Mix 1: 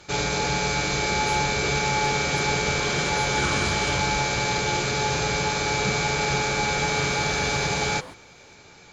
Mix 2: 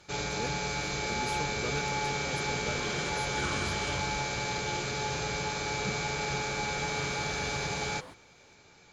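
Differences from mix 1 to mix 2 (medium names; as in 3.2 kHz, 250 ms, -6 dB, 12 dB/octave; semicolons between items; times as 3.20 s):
first sound -8.5 dB; second sound -6.5 dB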